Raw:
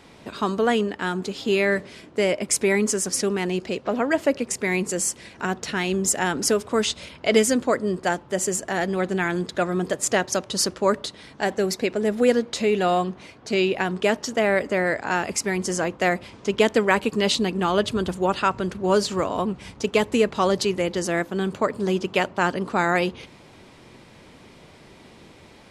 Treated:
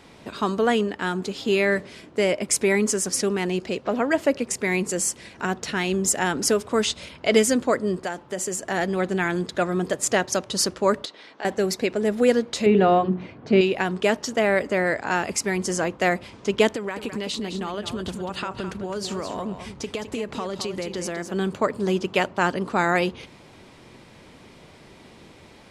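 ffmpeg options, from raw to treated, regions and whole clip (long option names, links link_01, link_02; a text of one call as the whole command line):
ffmpeg -i in.wav -filter_complex "[0:a]asettb=1/sr,asplit=3[link_01][link_02][link_03];[link_01]atrim=end=8.044[link_04];[link_02]atrim=start=8.04:end=8.66,asetpts=PTS-STARTPTS,afade=type=in:duration=0.004:curve=qsin,afade=type=out:start_time=0.616:duration=0.004:curve=qsin,equalizer=frequency=63:width=0.42:gain=-5.5,acompressor=threshold=-24dB:ratio=4:attack=3.2:release=140:knee=1:detection=peak[link_05];[link_03]atrim=start=8.656[link_06];[link_04][link_05]acrossfade=duration=0.004:curve1=hsin:curve2=qsin[link_07];[link_07][link_06]acrossfade=duration=0.004:curve1=qsin:curve2=hsin,asettb=1/sr,asplit=3[link_08][link_09][link_10];[link_08]atrim=end=11.054[link_11];[link_09]atrim=start=11.05:end=11.45,asetpts=PTS-STARTPTS,afade=type=in:duration=0.004:curve=qsin,afade=type=out:start_time=0.396:duration=0.004:curve=qsin,acrossover=split=290 5900:gain=0.0708 1 0.0891[link_12][link_13][link_14];[link_12][link_13][link_14]amix=inputs=3:normalize=0,acompressor=threshold=-34dB:ratio=2:attack=3.2:release=140:knee=1:detection=peak[link_15];[link_10]atrim=start=11.446[link_16];[link_11][link_15]acrossfade=duration=0.004:curve1=hsin:curve2=qsin[link_17];[link_17][link_16]acrossfade=duration=0.004:curve1=qsin:curve2=hsin,asettb=1/sr,asplit=3[link_18][link_19][link_20];[link_18]atrim=end=12.664[link_21];[link_19]atrim=start=12.66:end=13.61,asetpts=PTS-STARTPTS,afade=type=in:duration=0.004:curve=qsin,afade=type=out:start_time=0.946:duration=0.004:curve=qsin,highpass=100,lowpass=2900,lowshelf=frequency=370:gain=12,bandreject=frequency=60:width_type=h:width=6,bandreject=frequency=120:width_type=h:width=6,bandreject=frequency=180:width_type=h:width=6,bandreject=frequency=240:width_type=h:width=6,bandreject=frequency=300:width_type=h:width=6,bandreject=frequency=360:width_type=h:width=6,bandreject=frequency=420:width_type=h:width=6[link_22];[link_20]atrim=start=13.606[link_23];[link_21][link_22]acrossfade=duration=0.004:curve1=hsin:curve2=qsin[link_24];[link_24][link_23]acrossfade=duration=0.004:curve1=qsin:curve2=hsin,asettb=1/sr,asplit=3[link_25][link_26][link_27];[link_25]atrim=end=16.754[link_28];[link_26]atrim=start=16.75:end=21.32,asetpts=PTS-STARTPTS,afade=type=in:duration=0.004:curve=qsin,afade=type=out:start_time=4.566:duration=0.004:curve=qsin,acompressor=threshold=-25dB:ratio=8:attack=3.2:release=140:knee=1:detection=peak,aecho=1:1:211:0.355,atrim=end_sample=201537[link_29];[link_27]atrim=start=21.316[link_30];[link_28][link_29]acrossfade=duration=0.004:curve1=hsin:curve2=qsin[link_31];[link_31][link_30]acrossfade=duration=0.004:curve1=qsin:curve2=hsin" out.wav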